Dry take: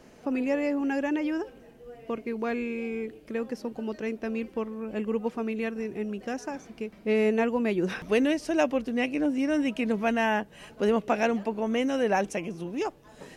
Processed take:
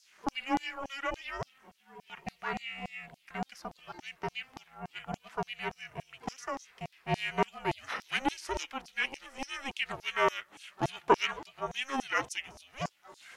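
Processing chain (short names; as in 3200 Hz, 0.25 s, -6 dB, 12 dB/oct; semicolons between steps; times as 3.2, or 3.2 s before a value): LFO high-pass saw down 3.5 Hz 520–5800 Hz; ring modulator 270 Hz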